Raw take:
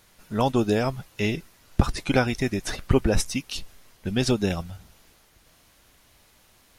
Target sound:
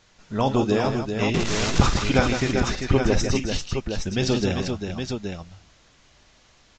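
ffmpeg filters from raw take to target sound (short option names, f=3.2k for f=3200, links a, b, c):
-filter_complex "[0:a]asettb=1/sr,asplit=3[a][b][c];[a]atrim=end=1.344[d];[b]atrim=start=1.34:end=1.94,asetpts=PTS-STARTPTS,afade=t=in:d=0.004:c=qsin,afade=t=out:st=0.596:d=0.004:c=qsin,aeval=exprs='val(0)+0.5*0.106*sgn(val(0))':c=same[e];[c]atrim=start=1.936[f];[d][e]acrossfade=d=0.004:c1=hsin:c2=qsin[g];[g][f]acrossfade=d=0.004:c1=qsin:c2=hsin,aecho=1:1:45|53|157|393|817:0.237|0.2|0.422|0.473|0.447" -ar 16000 -c:a libvorbis -b:a 64k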